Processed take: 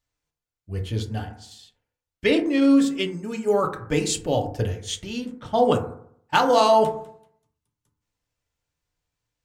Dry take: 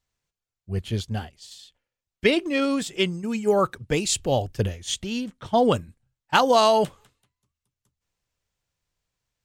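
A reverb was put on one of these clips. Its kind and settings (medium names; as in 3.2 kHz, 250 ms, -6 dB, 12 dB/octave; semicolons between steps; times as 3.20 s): FDN reverb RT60 0.64 s, low-frequency decay 1.05×, high-frequency decay 0.3×, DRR 2.5 dB; trim -2.5 dB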